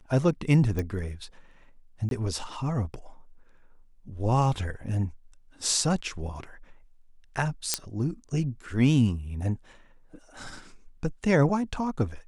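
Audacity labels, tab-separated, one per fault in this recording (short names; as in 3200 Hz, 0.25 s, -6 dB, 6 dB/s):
0.790000	0.790000	pop -18 dBFS
2.090000	2.110000	gap 22 ms
7.740000	7.740000	pop -6 dBFS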